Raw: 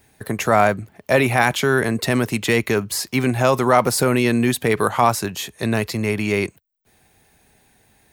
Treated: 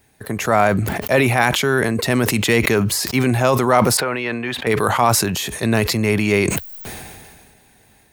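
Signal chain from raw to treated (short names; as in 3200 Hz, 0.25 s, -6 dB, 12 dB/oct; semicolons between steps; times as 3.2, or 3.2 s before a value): AGC gain up to 6 dB; 3.97–4.67 three-band isolator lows -13 dB, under 520 Hz, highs -23 dB, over 3400 Hz; sustainer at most 31 dB/s; gain -1.5 dB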